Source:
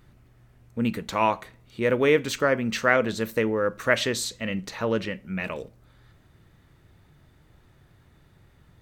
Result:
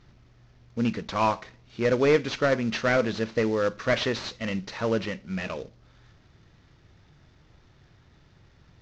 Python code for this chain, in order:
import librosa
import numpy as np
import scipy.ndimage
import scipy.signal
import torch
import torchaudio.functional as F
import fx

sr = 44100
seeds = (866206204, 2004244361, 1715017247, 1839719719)

y = fx.cvsd(x, sr, bps=32000)